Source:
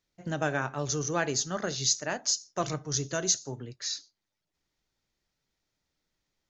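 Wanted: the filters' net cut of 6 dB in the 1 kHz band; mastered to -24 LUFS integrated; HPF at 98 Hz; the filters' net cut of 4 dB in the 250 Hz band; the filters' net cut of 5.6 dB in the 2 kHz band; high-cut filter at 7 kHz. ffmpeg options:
-af "highpass=98,lowpass=7000,equalizer=f=250:t=o:g=-5.5,equalizer=f=1000:t=o:g=-7,equalizer=f=2000:t=o:g=-4.5,volume=2.66"

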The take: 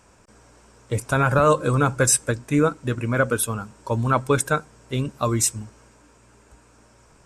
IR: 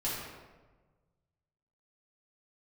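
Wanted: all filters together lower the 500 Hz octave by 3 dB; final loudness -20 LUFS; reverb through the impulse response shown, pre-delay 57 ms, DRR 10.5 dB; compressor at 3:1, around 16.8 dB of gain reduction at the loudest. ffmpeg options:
-filter_complex "[0:a]equalizer=f=500:t=o:g=-3.5,acompressor=threshold=0.0112:ratio=3,asplit=2[s0][s1];[1:a]atrim=start_sample=2205,adelay=57[s2];[s1][s2]afir=irnorm=-1:irlink=0,volume=0.158[s3];[s0][s3]amix=inputs=2:normalize=0,volume=7.5"

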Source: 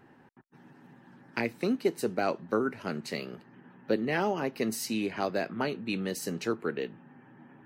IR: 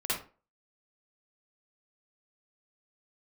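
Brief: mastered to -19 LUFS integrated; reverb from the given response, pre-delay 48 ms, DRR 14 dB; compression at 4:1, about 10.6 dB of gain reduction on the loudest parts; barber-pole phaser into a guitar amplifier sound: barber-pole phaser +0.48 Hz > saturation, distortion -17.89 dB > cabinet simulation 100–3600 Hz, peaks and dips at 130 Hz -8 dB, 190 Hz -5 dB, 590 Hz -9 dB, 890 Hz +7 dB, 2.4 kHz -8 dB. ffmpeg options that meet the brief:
-filter_complex "[0:a]acompressor=threshold=0.0178:ratio=4,asplit=2[s0][s1];[1:a]atrim=start_sample=2205,adelay=48[s2];[s1][s2]afir=irnorm=-1:irlink=0,volume=0.0891[s3];[s0][s3]amix=inputs=2:normalize=0,asplit=2[s4][s5];[s5]afreqshift=0.48[s6];[s4][s6]amix=inputs=2:normalize=1,asoftclip=threshold=0.0299,highpass=100,equalizer=f=130:t=q:w=4:g=-8,equalizer=f=190:t=q:w=4:g=-5,equalizer=f=590:t=q:w=4:g=-9,equalizer=f=890:t=q:w=4:g=7,equalizer=f=2400:t=q:w=4:g=-8,lowpass=f=3600:w=0.5412,lowpass=f=3600:w=1.3066,volume=21.1"

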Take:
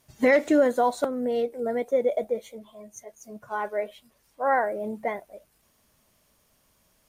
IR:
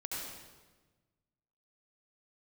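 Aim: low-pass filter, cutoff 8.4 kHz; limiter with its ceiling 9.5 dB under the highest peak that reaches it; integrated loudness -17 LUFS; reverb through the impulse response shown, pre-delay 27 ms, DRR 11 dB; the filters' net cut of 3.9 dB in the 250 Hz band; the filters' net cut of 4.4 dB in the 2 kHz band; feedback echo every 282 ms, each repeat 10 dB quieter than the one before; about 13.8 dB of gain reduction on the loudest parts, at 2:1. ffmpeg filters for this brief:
-filter_complex "[0:a]lowpass=8400,equalizer=f=250:t=o:g=-4.5,equalizer=f=2000:t=o:g=-5,acompressor=threshold=0.00631:ratio=2,alimiter=level_in=3.76:limit=0.0631:level=0:latency=1,volume=0.266,aecho=1:1:282|564|846|1128:0.316|0.101|0.0324|0.0104,asplit=2[s0][s1];[1:a]atrim=start_sample=2205,adelay=27[s2];[s1][s2]afir=irnorm=-1:irlink=0,volume=0.237[s3];[s0][s3]amix=inputs=2:normalize=0,volume=22.4"

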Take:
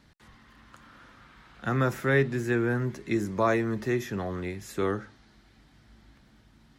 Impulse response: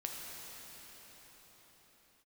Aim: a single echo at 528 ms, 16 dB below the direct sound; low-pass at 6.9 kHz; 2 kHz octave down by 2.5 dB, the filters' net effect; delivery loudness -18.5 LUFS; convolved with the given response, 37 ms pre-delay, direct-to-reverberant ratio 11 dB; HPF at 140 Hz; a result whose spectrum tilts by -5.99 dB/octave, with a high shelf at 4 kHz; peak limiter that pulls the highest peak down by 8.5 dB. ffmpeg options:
-filter_complex "[0:a]highpass=140,lowpass=6900,equalizer=f=2000:t=o:g=-4,highshelf=f=4000:g=4,alimiter=limit=0.0891:level=0:latency=1,aecho=1:1:528:0.158,asplit=2[s0][s1];[1:a]atrim=start_sample=2205,adelay=37[s2];[s1][s2]afir=irnorm=-1:irlink=0,volume=0.251[s3];[s0][s3]amix=inputs=2:normalize=0,volume=4.47"

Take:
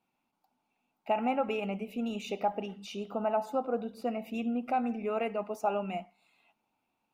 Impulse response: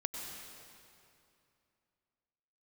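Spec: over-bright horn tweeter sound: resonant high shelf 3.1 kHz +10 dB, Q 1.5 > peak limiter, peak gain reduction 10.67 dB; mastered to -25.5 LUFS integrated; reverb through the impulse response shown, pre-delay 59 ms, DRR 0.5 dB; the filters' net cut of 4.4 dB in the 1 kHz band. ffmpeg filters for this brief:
-filter_complex "[0:a]equalizer=f=1000:t=o:g=-5.5,asplit=2[s0][s1];[1:a]atrim=start_sample=2205,adelay=59[s2];[s1][s2]afir=irnorm=-1:irlink=0,volume=0.794[s3];[s0][s3]amix=inputs=2:normalize=0,highshelf=f=3100:t=q:w=1.5:g=10,volume=3.98,alimiter=limit=0.141:level=0:latency=1"

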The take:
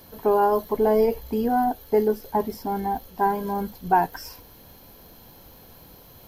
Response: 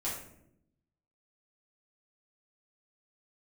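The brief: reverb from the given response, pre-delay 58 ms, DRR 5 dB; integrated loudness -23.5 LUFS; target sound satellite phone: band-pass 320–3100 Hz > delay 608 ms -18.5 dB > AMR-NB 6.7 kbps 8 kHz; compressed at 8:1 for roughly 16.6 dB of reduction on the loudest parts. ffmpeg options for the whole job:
-filter_complex "[0:a]acompressor=threshold=0.0251:ratio=8,asplit=2[s0][s1];[1:a]atrim=start_sample=2205,adelay=58[s2];[s1][s2]afir=irnorm=-1:irlink=0,volume=0.376[s3];[s0][s3]amix=inputs=2:normalize=0,highpass=320,lowpass=3100,aecho=1:1:608:0.119,volume=4.73" -ar 8000 -c:a libopencore_amrnb -b:a 6700

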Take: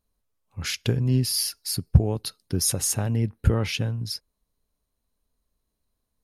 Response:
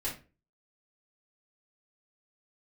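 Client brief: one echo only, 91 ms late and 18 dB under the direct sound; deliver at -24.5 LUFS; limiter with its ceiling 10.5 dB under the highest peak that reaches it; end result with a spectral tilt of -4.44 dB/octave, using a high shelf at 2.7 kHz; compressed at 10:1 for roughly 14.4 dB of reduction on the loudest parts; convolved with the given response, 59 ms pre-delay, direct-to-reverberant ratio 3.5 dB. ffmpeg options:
-filter_complex "[0:a]highshelf=f=2700:g=-7,acompressor=threshold=0.0501:ratio=10,alimiter=level_in=1.41:limit=0.0631:level=0:latency=1,volume=0.708,aecho=1:1:91:0.126,asplit=2[s0][s1];[1:a]atrim=start_sample=2205,adelay=59[s2];[s1][s2]afir=irnorm=-1:irlink=0,volume=0.473[s3];[s0][s3]amix=inputs=2:normalize=0,volume=3.55"

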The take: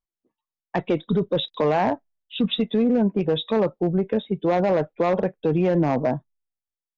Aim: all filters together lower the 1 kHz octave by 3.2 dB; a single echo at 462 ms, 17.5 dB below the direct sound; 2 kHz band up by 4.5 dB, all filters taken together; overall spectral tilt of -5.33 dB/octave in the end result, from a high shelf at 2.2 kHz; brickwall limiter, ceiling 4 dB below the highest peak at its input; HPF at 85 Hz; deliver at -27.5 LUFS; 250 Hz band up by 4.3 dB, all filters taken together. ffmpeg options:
-af "highpass=85,equalizer=f=250:t=o:g=6,equalizer=f=1000:t=o:g=-7,equalizer=f=2000:t=o:g=5,highshelf=f=2200:g=4.5,alimiter=limit=0.251:level=0:latency=1,aecho=1:1:462:0.133,volume=0.531"

